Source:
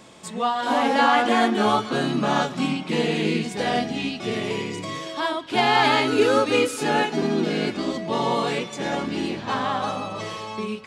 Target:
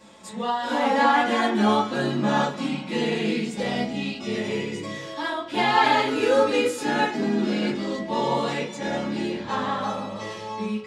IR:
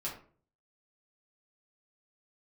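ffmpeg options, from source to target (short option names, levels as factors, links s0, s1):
-filter_complex "[0:a]asettb=1/sr,asplit=3[s0][s1][s2];[s0]atrim=end=3.394[s3];[s1]atrim=start=3.39:end=4.33,asetpts=PTS-STARTPTS,afade=t=in:d=0.004:c=qsin,afade=t=out:st=0.936:d=0.004:c=qsin,bandreject=f=1700:w=7.3[s4];[s2]atrim=start=4.326[s5];[s3][s4]acrossfade=d=0.004:c1=hsin:c2=qsin[s6];[s6][s5]acrossfade=d=0.004:c1=qsin:c2=hsin[s7];[1:a]atrim=start_sample=2205,asetrate=66150,aresample=44100[s8];[s7][s8]afir=irnorm=-1:irlink=0"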